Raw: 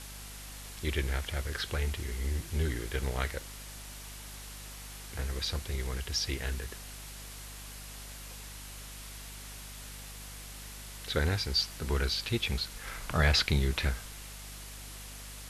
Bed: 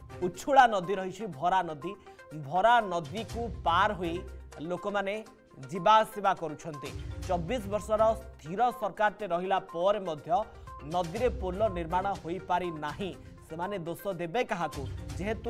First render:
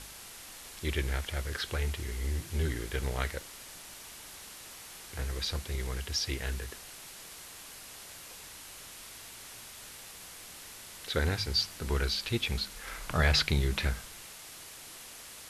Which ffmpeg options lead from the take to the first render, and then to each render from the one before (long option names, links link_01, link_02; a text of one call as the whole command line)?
ffmpeg -i in.wav -af "bandreject=frequency=50:width_type=h:width=4,bandreject=frequency=100:width_type=h:width=4,bandreject=frequency=150:width_type=h:width=4,bandreject=frequency=200:width_type=h:width=4,bandreject=frequency=250:width_type=h:width=4" out.wav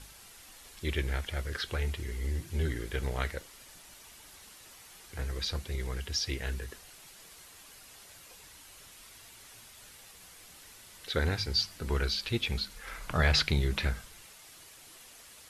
ffmpeg -i in.wav -af "afftdn=noise_reduction=7:noise_floor=-48" out.wav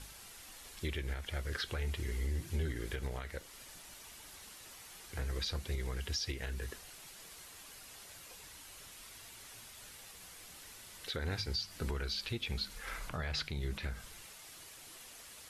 ffmpeg -i in.wav -af "acompressor=threshold=-31dB:ratio=4,alimiter=level_in=3dB:limit=-24dB:level=0:latency=1:release=208,volume=-3dB" out.wav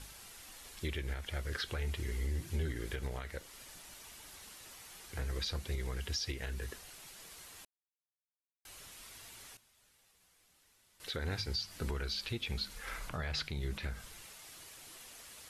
ffmpeg -i in.wav -filter_complex "[0:a]asplit=5[link_01][link_02][link_03][link_04][link_05];[link_01]atrim=end=7.65,asetpts=PTS-STARTPTS,afade=type=out:start_time=7.646:duration=0.004:curve=hsin[link_06];[link_02]atrim=start=7.65:end=8.65,asetpts=PTS-STARTPTS,volume=0[link_07];[link_03]atrim=start=8.65:end=9.57,asetpts=PTS-STARTPTS,afade=type=in:duration=0.004:curve=hsin,afade=type=out:start_time=0.73:duration=0.19:curve=log:silence=0.149624[link_08];[link_04]atrim=start=9.57:end=11,asetpts=PTS-STARTPTS,volume=-16.5dB[link_09];[link_05]atrim=start=11,asetpts=PTS-STARTPTS,afade=type=in:duration=0.19:curve=log:silence=0.149624[link_10];[link_06][link_07][link_08][link_09][link_10]concat=n=5:v=0:a=1" out.wav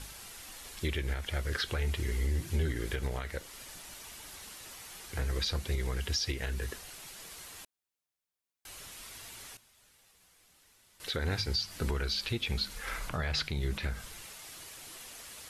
ffmpeg -i in.wav -af "volume=5dB" out.wav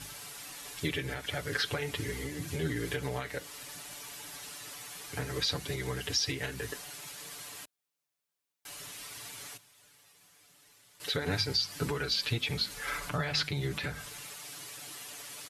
ffmpeg -i in.wav -af "highpass=73,aecho=1:1:6.9:0.96" out.wav